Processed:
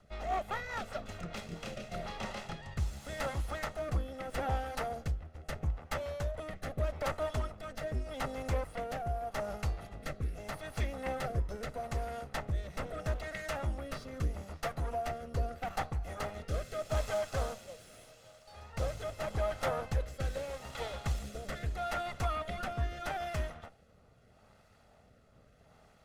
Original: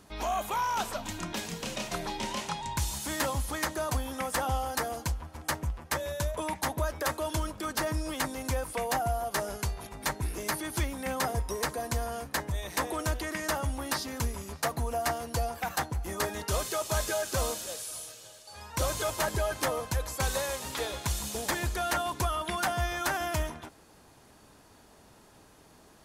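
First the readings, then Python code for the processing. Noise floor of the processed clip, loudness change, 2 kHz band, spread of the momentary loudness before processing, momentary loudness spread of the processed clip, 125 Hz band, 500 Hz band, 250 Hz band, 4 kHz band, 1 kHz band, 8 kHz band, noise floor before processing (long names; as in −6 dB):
−63 dBFS, −5.5 dB, −8.0 dB, 5 LU, 7 LU, −2.0 dB, −4.0 dB, −7.0 dB, −10.5 dB, −6.5 dB, −16.0 dB, −57 dBFS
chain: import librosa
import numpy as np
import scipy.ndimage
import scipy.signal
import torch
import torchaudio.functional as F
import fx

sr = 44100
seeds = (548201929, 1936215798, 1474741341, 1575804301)

y = fx.lower_of_two(x, sr, delay_ms=1.5)
y = fx.lowpass(y, sr, hz=1800.0, slope=6)
y = fx.rotary_switch(y, sr, hz=5.0, then_hz=0.8, switch_at_s=1.17)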